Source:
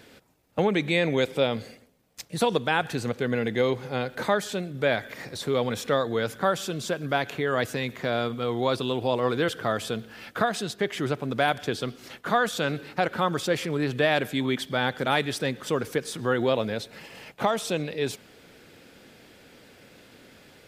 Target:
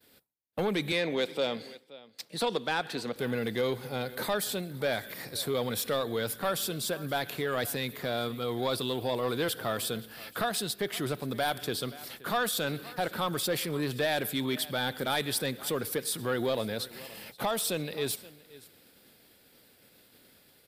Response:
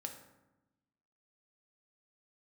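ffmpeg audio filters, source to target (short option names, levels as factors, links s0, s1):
-filter_complex "[0:a]highshelf=f=7100:g=10.5,agate=range=0.0224:threshold=0.00631:ratio=3:detection=peak,asettb=1/sr,asplit=3[s0][s1][s2];[s0]atrim=end=0.924[s3];[s1]atrim=start=0.92:end=3.16,asetpts=PTS-STARTPTS,afade=t=in:d=0.004:c=qsin,afade=t=out:st=2.236:d=0.004:c=qsin,acrossover=split=180 6600:gain=0.141 1 0.141[s4][s5][s6];[s4][s5][s6]amix=inputs=3:normalize=0[s7];[s2]atrim=start=3.156[s8];[s3][s7]acrossfade=d=0.004:c1=hsin:c2=qsin[s9];[s9][s8]acrossfade=d=0.004:c1=qsin:c2=hsin,aecho=1:1:524:0.0841,asoftclip=type=tanh:threshold=0.141,aexciter=amount=1.7:drive=1.8:freq=3600,volume=0.631"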